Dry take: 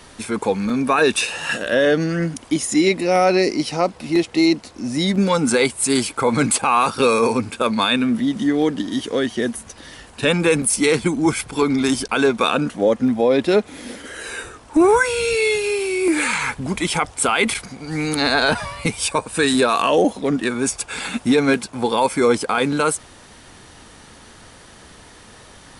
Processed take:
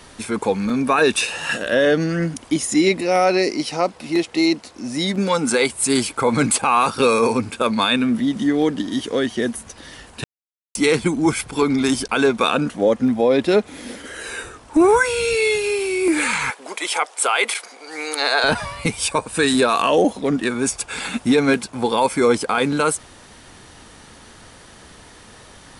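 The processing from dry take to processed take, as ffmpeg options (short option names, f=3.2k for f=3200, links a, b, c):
-filter_complex "[0:a]asettb=1/sr,asplit=3[a][b][c];[a]atrim=end=3.014[d];[b]atrim=start=3.01:end=5.7,asetpts=PTS-STARTPTS,afade=t=in:d=0.004:c=qsin,afade=t=out:st=2.686:d=0.004:c=qsin,lowshelf=f=180:g=-8.5[e];[c]atrim=start=5.696[f];[d][e]acrossfade=d=0.004:c1=hsin:c2=qsin[g];[g][f]acrossfade=d=0.004:c1=qsin:c2=hsin,asettb=1/sr,asplit=3[h][i][j];[h]atrim=end=16.504[k];[i]atrim=start=16.5:end=18.44,asetpts=PTS-STARTPTS,afade=t=in:d=0.004:c=qsin,afade=t=out:st=1.936:d=0.004:c=qsin,highpass=f=430:w=0.5412,highpass=f=430:w=1.3066[l];[j]atrim=start=18.436[m];[k][l]acrossfade=d=0.004:c1=hsin:c2=qsin[n];[n][m]acrossfade=d=0.004:c1=qsin:c2=hsin,asplit=3[o][p][q];[o]atrim=end=10.24,asetpts=PTS-STARTPTS,afade=t=out:st=10.236:d=0.004:c=hsin[r];[p]atrim=start=10.24:end=10.75,asetpts=PTS-STARTPTS,volume=0[s];[q]atrim=start=10.75,asetpts=PTS-STARTPTS,afade=t=in:d=0.004:c=hsin[t];[r][s][t]concat=n=3:v=0:a=1"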